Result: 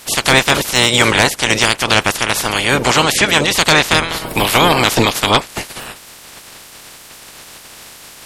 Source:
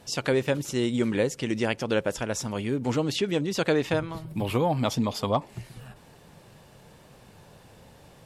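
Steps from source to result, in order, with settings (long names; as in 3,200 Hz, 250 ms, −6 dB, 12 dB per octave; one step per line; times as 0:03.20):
ceiling on every frequency bin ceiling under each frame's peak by 29 dB
sine wavefolder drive 7 dB, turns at −5 dBFS
level +3.5 dB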